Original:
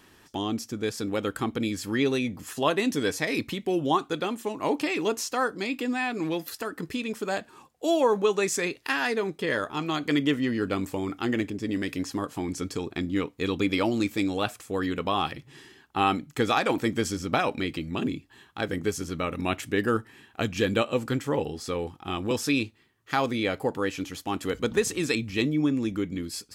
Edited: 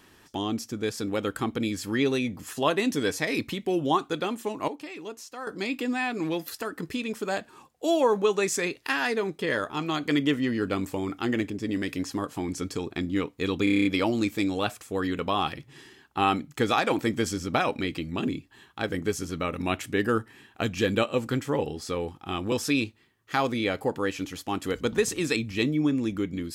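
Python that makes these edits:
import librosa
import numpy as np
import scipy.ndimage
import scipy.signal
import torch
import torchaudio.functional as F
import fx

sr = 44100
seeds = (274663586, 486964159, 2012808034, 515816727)

y = fx.edit(x, sr, fx.clip_gain(start_s=4.68, length_s=0.79, db=-12.0),
    fx.stutter(start_s=13.64, slice_s=0.03, count=8), tone=tone)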